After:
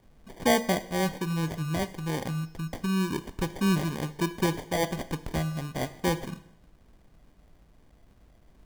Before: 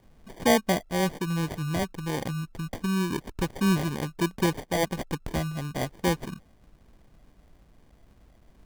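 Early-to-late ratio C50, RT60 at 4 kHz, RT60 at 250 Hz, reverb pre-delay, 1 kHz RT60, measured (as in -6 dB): 15.0 dB, 0.75 s, 0.80 s, 9 ms, 0.75 s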